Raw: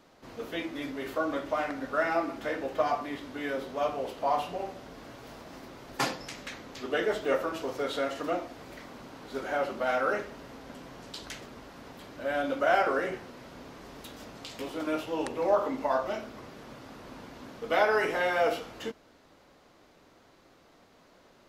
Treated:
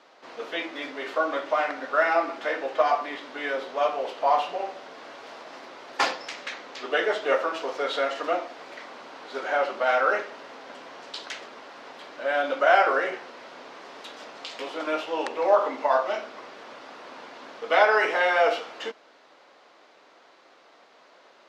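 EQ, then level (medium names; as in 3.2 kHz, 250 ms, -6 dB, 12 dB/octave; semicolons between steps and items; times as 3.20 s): band-pass 520–5000 Hz; +7.0 dB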